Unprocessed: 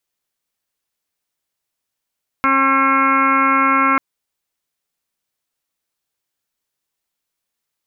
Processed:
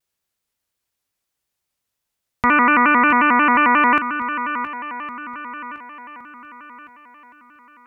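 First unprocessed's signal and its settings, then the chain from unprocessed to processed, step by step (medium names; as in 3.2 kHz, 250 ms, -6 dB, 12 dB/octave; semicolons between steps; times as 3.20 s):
steady additive tone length 1.54 s, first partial 270 Hz, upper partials -8.5/-9.5/4/3.5/-4/-17/0/-9.5/-18 dB, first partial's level -20 dB
peaking EQ 67 Hz +6.5 dB 1.9 oct; on a send: shuffle delay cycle 1113 ms, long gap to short 1.5:1, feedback 38%, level -12 dB; on the sum: vibrato with a chosen wave square 5.6 Hz, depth 160 cents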